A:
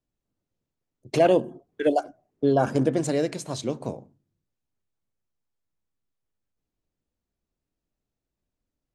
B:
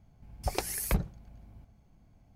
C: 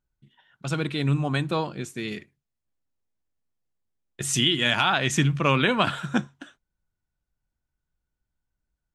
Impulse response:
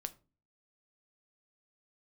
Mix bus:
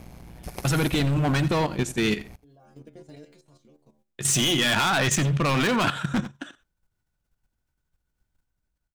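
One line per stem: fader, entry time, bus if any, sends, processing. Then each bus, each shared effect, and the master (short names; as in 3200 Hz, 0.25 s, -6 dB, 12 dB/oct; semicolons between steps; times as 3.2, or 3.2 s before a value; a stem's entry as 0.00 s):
-6.0 dB, 0.00 s, no send, no echo send, de-esser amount 100%; bell 630 Hz -5 dB 2.3 oct; metallic resonator 72 Hz, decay 0.36 s, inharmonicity 0.002; auto duck -13 dB, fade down 0.75 s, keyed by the third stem
-1.0 dB, 0.00 s, no send, echo send -16 dB, per-bin compression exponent 0.4; AM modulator 120 Hz, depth 80%
+1.5 dB, 0.00 s, no send, echo send -16.5 dB, AGC gain up to 10 dB; hard clip -17 dBFS, distortion -7 dB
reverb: off
echo: echo 87 ms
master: level quantiser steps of 11 dB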